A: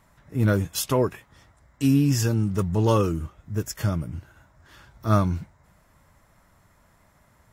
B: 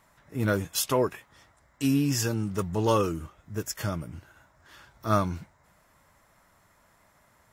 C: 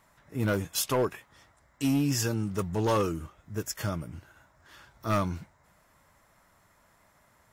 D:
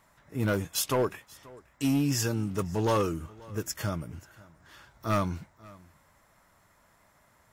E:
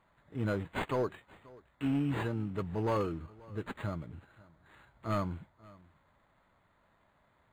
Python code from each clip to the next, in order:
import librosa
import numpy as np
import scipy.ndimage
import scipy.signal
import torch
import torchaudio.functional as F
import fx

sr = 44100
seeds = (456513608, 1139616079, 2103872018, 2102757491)

y1 = fx.low_shelf(x, sr, hz=240.0, db=-9.5)
y2 = np.clip(y1, -10.0 ** (-19.5 / 20.0), 10.0 ** (-19.5 / 20.0))
y2 = y2 * librosa.db_to_amplitude(-1.0)
y3 = y2 + 10.0 ** (-23.0 / 20.0) * np.pad(y2, (int(534 * sr / 1000.0), 0))[:len(y2)]
y4 = np.interp(np.arange(len(y3)), np.arange(len(y3))[::8], y3[::8])
y4 = y4 * librosa.db_to_amplitude(-5.0)